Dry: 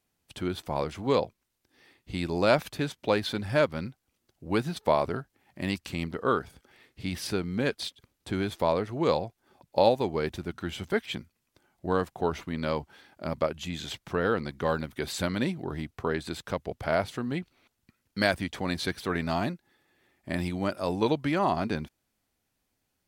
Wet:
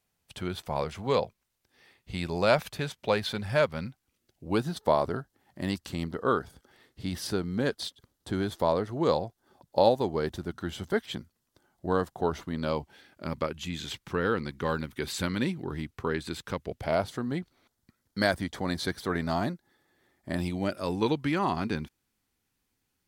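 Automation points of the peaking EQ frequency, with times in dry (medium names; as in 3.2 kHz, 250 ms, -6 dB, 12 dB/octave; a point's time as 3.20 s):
peaking EQ -9.5 dB 0.41 oct
3.76 s 300 Hz
4.66 s 2.4 kHz
12.57 s 2.4 kHz
13.27 s 660 Hz
16.62 s 660 Hz
17.11 s 2.6 kHz
20.30 s 2.6 kHz
20.90 s 630 Hz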